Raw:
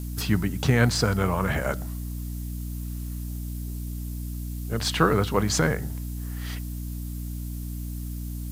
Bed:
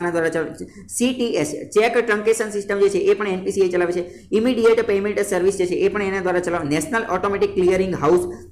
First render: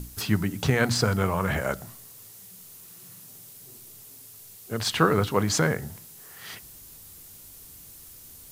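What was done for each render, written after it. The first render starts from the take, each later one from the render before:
mains-hum notches 60/120/180/240/300 Hz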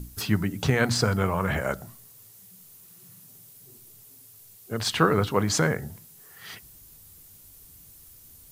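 broadband denoise 6 dB, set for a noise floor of −48 dBFS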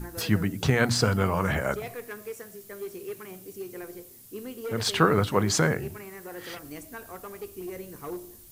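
mix in bed −21 dB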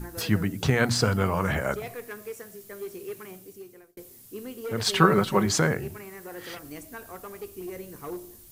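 0:03.26–0:03.97: fade out
0:04.86–0:05.46: comb filter 5.3 ms, depth 69%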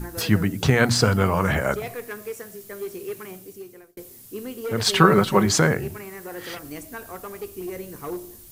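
level +4.5 dB
brickwall limiter −1 dBFS, peak gain reduction 2 dB

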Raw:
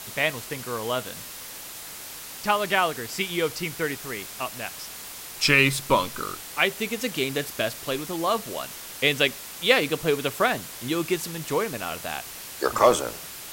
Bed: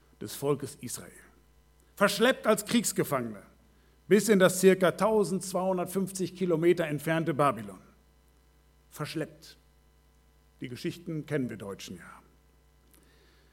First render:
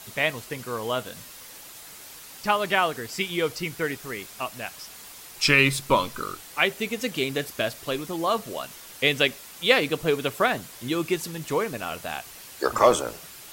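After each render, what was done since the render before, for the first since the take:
broadband denoise 6 dB, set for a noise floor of −40 dBFS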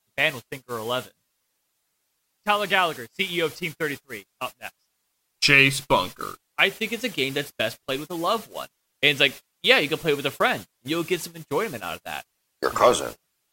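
noise gate −32 dBFS, range −30 dB
dynamic equaliser 2,900 Hz, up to +4 dB, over −36 dBFS, Q 0.96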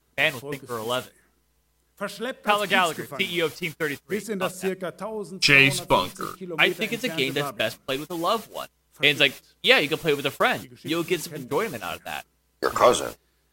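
mix in bed −7 dB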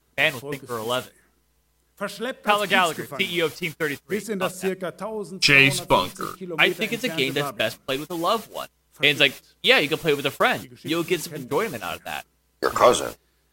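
level +1.5 dB
brickwall limiter −2 dBFS, peak gain reduction 2 dB

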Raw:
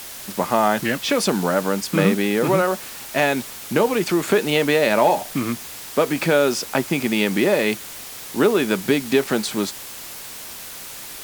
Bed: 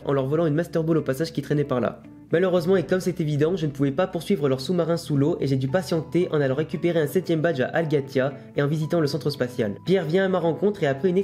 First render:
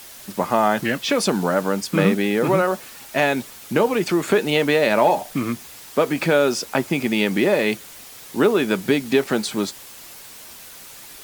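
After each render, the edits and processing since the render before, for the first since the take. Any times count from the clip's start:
broadband denoise 6 dB, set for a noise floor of −36 dBFS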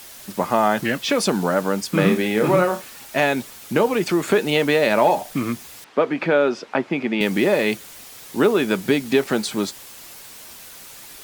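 0:02.00–0:02.82: flutter between parallel walls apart 4.8 metres, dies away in 0.23 s
0:05.84–0:07.21: band-pass filter 190–2,700 Hz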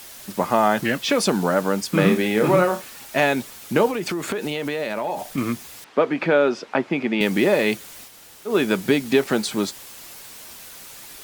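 0:03.88–0:05.38: downward compressor, threshold −22 dBFS
0:08.09–0:08.50: fill with room tone, crossfade 0.10 s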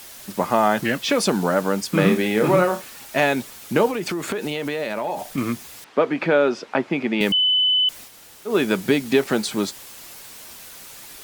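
0:07.32–0:07.89: beep over 3,010 Hz −15 dBFS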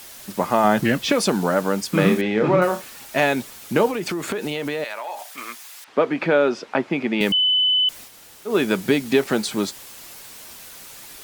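0:00.64–0:01.12: low-shelf EQ 330 Hz +7 dB
0:02.21–0:02.62: high-frequency loss of the air 160 metres
0:04.84–0:05.88: high-pass filter 880 Hz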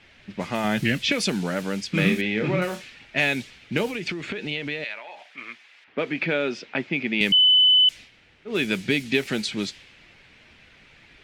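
low-pass that shuts in the quiet parts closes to 1,600 Hz, open at −15 dBFS
drawn EQ curve 110 Hz 0 dB, 1,100 Hz −13 dB, 2,300 Hz +4 dB, 16,000 Hz −9 dB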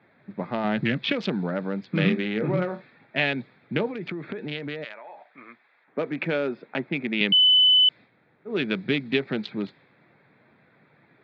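adaptive Wiener filter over 15 samples
Chebyshev band-pass filter 130–3,700 Hz, order 3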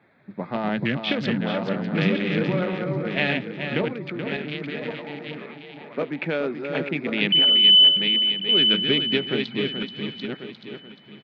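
feedback delay that plays each chunk backwards 546 ms, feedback 41%, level −4.5 dB
on a send: single-tap delay 429 ms −8 dB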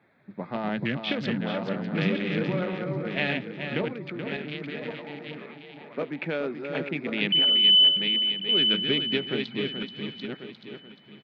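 level −4 dB

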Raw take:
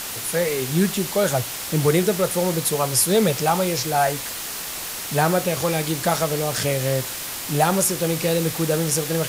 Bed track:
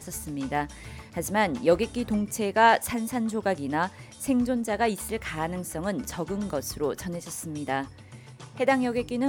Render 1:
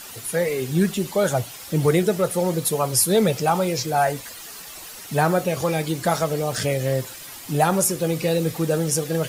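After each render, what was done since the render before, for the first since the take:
broadband denoise 11 dB, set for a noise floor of −31 dBFS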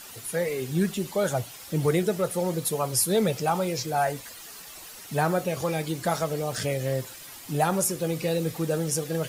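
level −5 dB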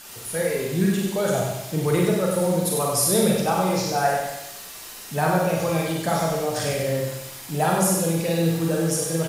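repeating echo 96 ms, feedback 47%, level −5 dB
four-comb reverb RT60 0.47 s, combs from 33 ms, DRR 0 dB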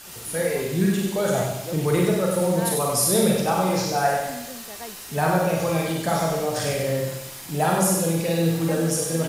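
mix in bed track −14.5 dB

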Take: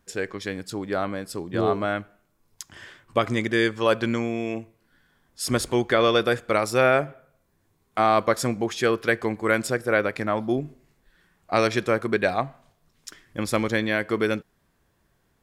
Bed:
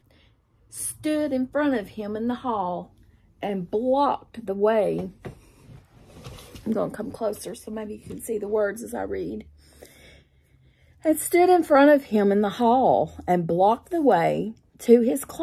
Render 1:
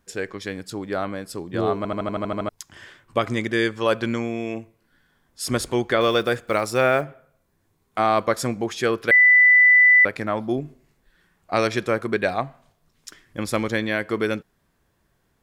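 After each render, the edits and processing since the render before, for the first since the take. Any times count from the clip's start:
0:01.77: stutter in place 0.08 s, 9 plays
0:06.01–0:07.05: one scale factor per block 7 bits
0:09.11–0:10.05: beep over 1,990 Hz −10 dBFS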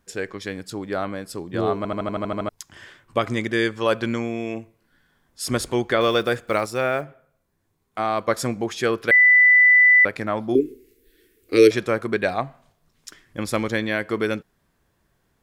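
0:06.66–0:08.28: clip gain −4 dB
0:10.55–0:11.71: drawn EQ curve 110 Hz 0 dB, 160 Hz −15 dB, 290 Hz +11 dB, 460 Hz +15 dB, 680 Hz −28 dB, 2,200 Hz +3 dB, 7,100 Hz +4 dB, 13,000 Hz +15 dB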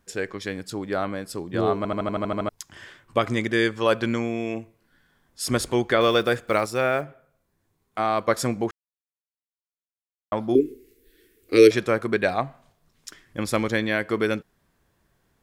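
0:08.71–0:10.32: silence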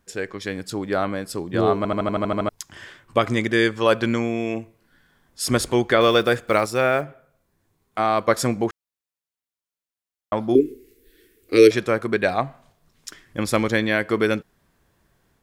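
automatic gain control gain up to 3.5 dB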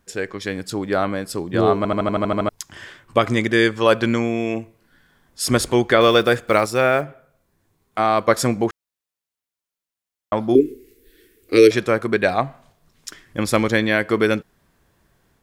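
level +2.5 dB
brickwall limiter −2 dBFS, peak gain reduction 2 dB

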